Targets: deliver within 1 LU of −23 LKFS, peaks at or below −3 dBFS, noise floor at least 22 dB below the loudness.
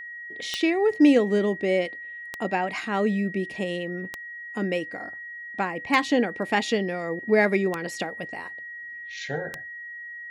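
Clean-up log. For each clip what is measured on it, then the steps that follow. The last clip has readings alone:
number of clicks 6; interfering tone 1,900 Hz; level of the tone −36 dBFS; integrated loudness −25.5 LKFS; sample peak −7.5 dBFS; target loudness −23.0 LKFS
→ click removal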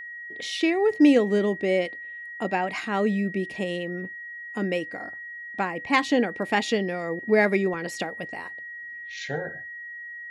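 number of clicks 0; interfering tone 1,900 Hz; level of the tone −36 dBFS
→ notch filter 1,900 Hz, Q 30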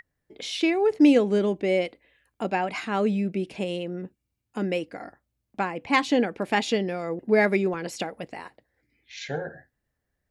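interfering tone none found; integrated loudness −25.5 LKFS; sample peak −7.5 dBFS; target loudness −23.0 LKFS
→ level +2.5 dB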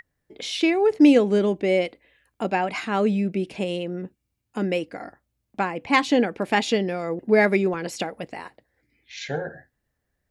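integrated loudness −23.0 LKFS; sample peak −5.0 dBFS; background noise floor −78 dBFS

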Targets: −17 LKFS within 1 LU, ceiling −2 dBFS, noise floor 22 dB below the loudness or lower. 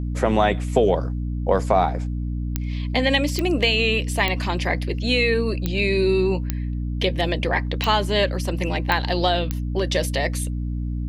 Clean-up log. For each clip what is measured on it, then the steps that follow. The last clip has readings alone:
number of clicks 8; mains hum 60 Hz; hum harmonics up to 300 Hz; level of the hum −23 dBFS; integrated loudness −22.0 LKFS; sample peak −2.5 dBFS; target loudness −17.0 LKFS
→ click removal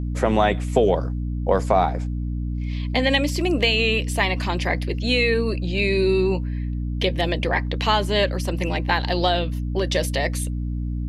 number of clicks 0; mains hum 60 Hz; hum harmonics up to 300 Hz; level of the hum −23 dBFS
→ hum removal 60 Hz, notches 5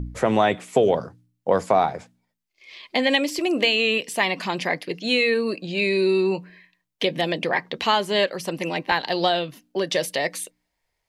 mains hum none found; integrated loudness −22.5 LKFS; sample peak −4.0 dBFS; target loudness −17.0 LKFS
→ level +5.5 dB
brickwall limiter −2 dBFS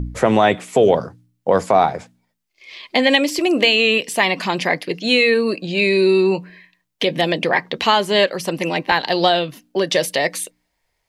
integrated loudness −17.5 LKFS; sample peak −2.0 dBFS; background noise floor −73 dBFS

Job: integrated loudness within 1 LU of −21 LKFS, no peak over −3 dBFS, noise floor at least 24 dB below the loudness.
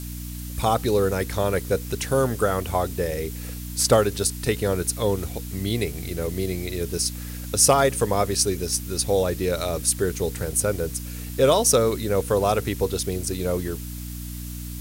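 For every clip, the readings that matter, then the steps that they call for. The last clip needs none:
mains hum 60 Hz; hum harmonics up to 300 Hz; level of the hum −31 dBFS; background noise floor −34 dBFS; target noise floor −48 dBFS; integrated loudness −23.5 LKFS; sample peak −4.5 dBFS; target loudness −21.0 LKFS
→ hum removal 60 Hz, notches 5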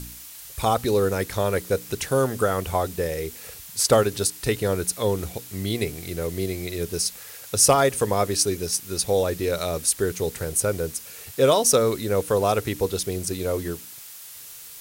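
mains hum none found; background noise floor −42 dBFS; target noise floor −48 dBFS
→ broadband denoise 6 dB, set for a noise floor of −42 dBFS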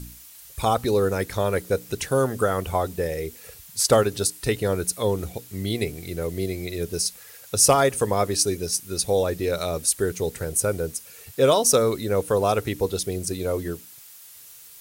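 background noise floor −46 dBFS; target noise floor −48 dBFS
→ broadband denoise 6 dB, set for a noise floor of −46 dBFS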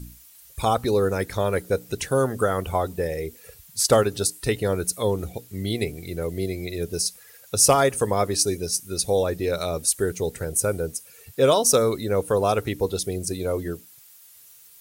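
background noise floor −50 dBFS; integrated loudness −23.5 LKFS; sample peak −4.5 dBFS; target loudness −21.0 LKFS
→ level +2.5 dB
brickwall limiter −3 dBFS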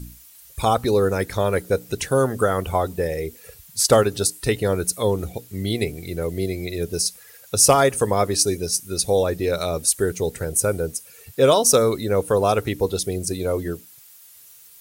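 integrated loudness −21.0 LKFS; sample peak −3.0 dBFS; background noise floor −48 dBFS

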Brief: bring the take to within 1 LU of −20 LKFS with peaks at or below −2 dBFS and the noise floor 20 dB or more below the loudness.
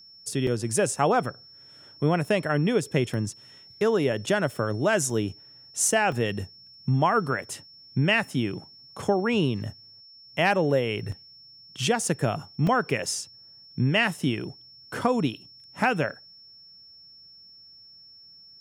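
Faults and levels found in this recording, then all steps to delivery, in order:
number of dropouts 6; longest dropout 2.8 ms; interfering tone 5,400 Hz; level of the tone −48 dBFS; integrated loudness −26.0 LKFS; sample peak −8.5 dBFS; target loudness −20.0 LKFS
→ repair the gap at 0:00.47/0:03.14/0:05.10/0:06.12/0:11.12/0:12.67, 2.8 ms
notch filter 5,400 Hz, Q 30
level +6 dB

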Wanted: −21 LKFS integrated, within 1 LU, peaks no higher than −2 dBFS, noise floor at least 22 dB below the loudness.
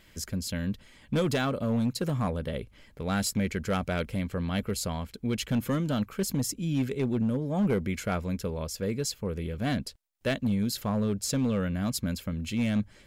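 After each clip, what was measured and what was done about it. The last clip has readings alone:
share of clipped samples 1.1%; peaks flattened at −20.5 dBFS; integrated loudness −30.0 LKFS; sample peak −20.5 dBFS; target loudness −21.0 LKFS
→ clipped peaks rebuilt −20.5 dBFS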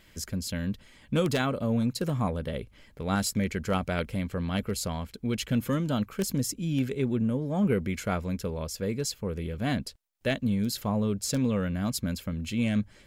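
share of clipped samples 0.0%; integrated loudness −29.5 LKFS; sample peak −11.5 dBFS; target loudness −21.0 LKFS
→ level +8.5 dB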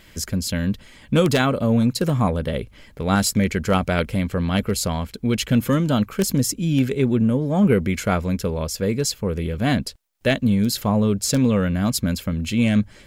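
integrated loudness −21.0 LKFS; sample peak −3.0 dBFS; background noise floor −48 dBFS

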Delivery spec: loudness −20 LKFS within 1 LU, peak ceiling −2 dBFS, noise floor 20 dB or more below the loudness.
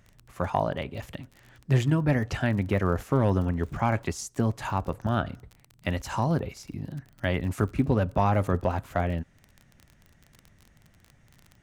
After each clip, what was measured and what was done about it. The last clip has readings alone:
crackle rate 27 per second; integrated loudness −28.0 LKFS; sample peak −12.0 dBFS; target loudness −20.0 LKFS
→ click removal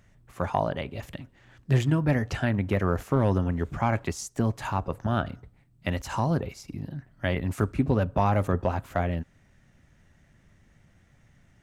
crackle rate 0 per second; integrated loudness −28.0 LKFS; sample peak −11.0 dBFS; target loudness −20.0 LKFS
→ level +8 dB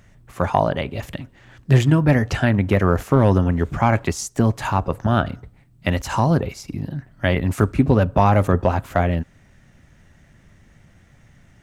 integrated loudness −20.0 LKFS; sample peak −3.0 dBFS; background noise floor −53 dBFS

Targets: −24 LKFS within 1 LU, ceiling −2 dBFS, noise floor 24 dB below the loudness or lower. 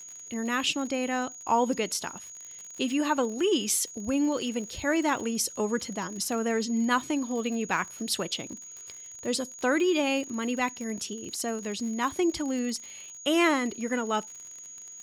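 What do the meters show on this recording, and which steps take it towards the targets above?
crackle rate 53 per second; interfering tone 6,700 Hz; level of the tone −42 dBFS; integrated loudness −28.5 LKFS; sample peak −11.5 dBFS; target loudness −24.0 LKFS
→ click removal
notch filter 6,700 Hz, Q 30
level +4.5 dB

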